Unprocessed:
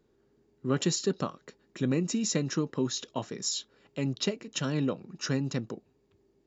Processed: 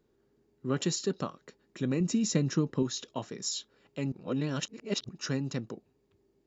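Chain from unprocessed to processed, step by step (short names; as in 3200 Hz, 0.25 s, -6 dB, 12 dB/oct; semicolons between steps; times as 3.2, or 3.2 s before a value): 2–2.83 low shelf 250 Hz +8.5 dB; 4.12–5.09 reverse; gain -2.5 dB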